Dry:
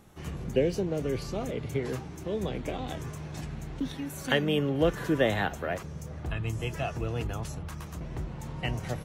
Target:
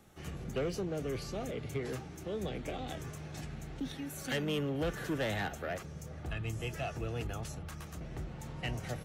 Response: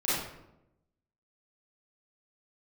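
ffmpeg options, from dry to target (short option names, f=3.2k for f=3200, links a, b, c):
-filter_complex "[0:a]lowshelf=f=400:g=-3.5,bandreject=f=1k:w=6.5,acrossover=split=180|5100[a][b][c];[b]asoftclip=type=tanh:threshold=-28dB[d];[a][d][c]amix=inputs=3:normalize=0,volume=-2.5dB"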